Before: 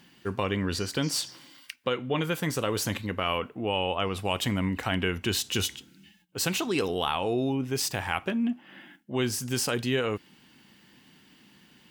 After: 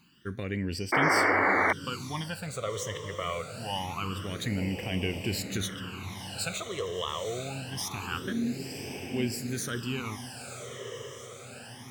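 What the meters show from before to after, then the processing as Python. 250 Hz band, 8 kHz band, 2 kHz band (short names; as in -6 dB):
-3.5 dB, -4.0 dB, +3.5 dB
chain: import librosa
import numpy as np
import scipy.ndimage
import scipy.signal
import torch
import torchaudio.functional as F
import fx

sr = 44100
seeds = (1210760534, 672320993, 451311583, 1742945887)

y = fx.echo_diffused(x, sr, ms=931, feedback_pct=66, wet_db=-7)
y = fx.phaser_stages(y, sr, stages=12, low_hz=250.0, high_hz=1300.0, hz=0.25, feedback_pct=25)
y = fx.spec_paint(y, sr, seeds[0], shape='noise', start_s=0.92, length_s=0.81, low_hz=250.0, high_hz=2300.0, level_db=-21.0)
y = F.gain(torch.from_numpy(y), -3.0).numpy()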